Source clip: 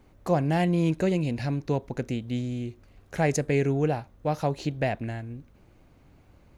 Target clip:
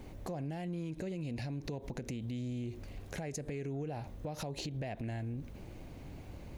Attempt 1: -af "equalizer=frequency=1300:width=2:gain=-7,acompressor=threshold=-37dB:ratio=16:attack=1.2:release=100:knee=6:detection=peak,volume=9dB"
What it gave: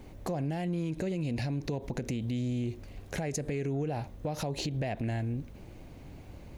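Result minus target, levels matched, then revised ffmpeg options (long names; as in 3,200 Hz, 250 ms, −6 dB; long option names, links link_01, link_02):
downward compressor: peak gain reduction −6.5 dB
-af "equalizer=frequency=1300:width=2:gain=-7,acompressor=threshold=-44dB:ratio=16:attack=1.2:release=100:knee=6:detection=peak,volume=9dB"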